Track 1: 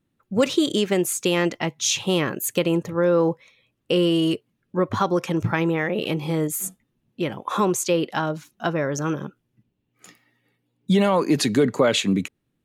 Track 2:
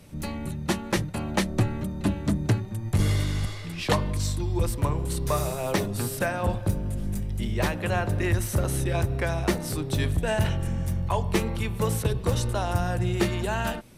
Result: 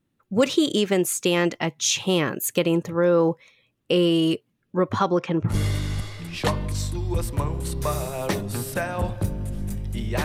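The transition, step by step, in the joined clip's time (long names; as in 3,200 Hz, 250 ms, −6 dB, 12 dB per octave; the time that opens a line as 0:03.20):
track 1
0:04.93–0:05.54: low-pass filter 11,000 Hz → 1,400 Hz
0:05.51: continue with track 2 from 0:02.96, crossfade 0.06 s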